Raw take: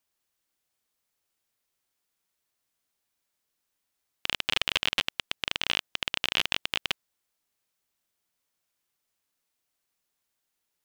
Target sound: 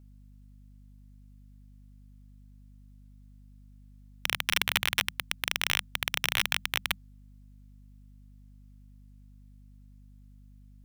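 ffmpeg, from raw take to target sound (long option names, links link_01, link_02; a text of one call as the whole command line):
ffmpeg -i in.wav -af "afreqshift=-200,aeval=exprs='0.398*(cos(1*acos(clip(val(0)/0.398,-1,1)))-cos(1*PI/2))+0.112*(cos(7*acos(clip(val(0)/0.398,-1,1)))-cos(7*PI/2))':channel_layout=same,aeval=exprs='val(0)+0.00251*(sin(2*PI*50*n/s)+sin(2*PI*2*50*n/s)/2+sin(2*PI*3*50*n/s)/3+sin(2*PI*4*50*n/s)/4+sin(2*PI*5*50*n/s)/5)':channel_layout=same" out.wav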